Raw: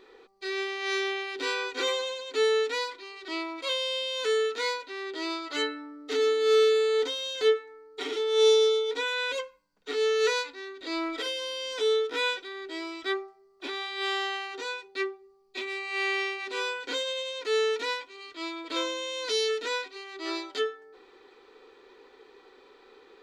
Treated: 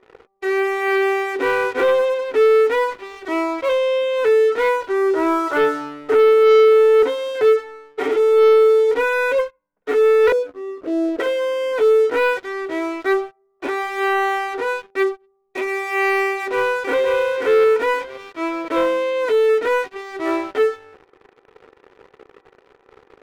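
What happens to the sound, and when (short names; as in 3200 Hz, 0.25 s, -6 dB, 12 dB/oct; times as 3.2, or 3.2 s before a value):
4.82–7.03 speaker cabinet 320–2900 Hz, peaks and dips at 370 Hz +10 dB, 930 Hz +5 dB, 1400 Hz +6 dB, 2100 Hz -4 dB
10.32–11.2 steep low-pass 630 Hz
16.31–17.11 echo throw 0.53 s, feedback 25%, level -4 dB
whole clip: LPF 2200 Hz 24 dB/oct; bell 610 Hz +6.5 dB 1.2 oct; sample leveller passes 3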